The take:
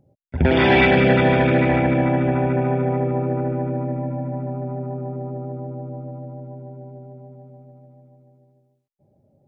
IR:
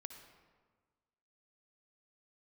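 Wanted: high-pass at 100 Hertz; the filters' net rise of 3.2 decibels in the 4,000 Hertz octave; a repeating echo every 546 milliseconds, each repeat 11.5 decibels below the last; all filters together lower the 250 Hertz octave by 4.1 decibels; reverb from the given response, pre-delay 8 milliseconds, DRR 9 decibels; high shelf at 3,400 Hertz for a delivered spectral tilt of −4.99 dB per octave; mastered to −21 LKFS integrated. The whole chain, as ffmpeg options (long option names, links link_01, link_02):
-filter_complex "[0:a]highpass=100,equalizer=frequency=250:width_type=o:gain=-5,highshelf=frequency=3400:gain=-5,equalizer=frequency=4000:width_type=o:gain=7.5,aecho=1:1:546|1092|1638:0.266|0.0718|0.0194,asplit=2[link_01][link_02];[1:a]atrim=start_sample=2205,adelay=8[link_03];[link_02][link_03]afir=irnorm=-1:irlink=0,volume=-4.5dB[link_04];[link_01][link_04]amix=inputs=2:normalize=0,volume=-1dB"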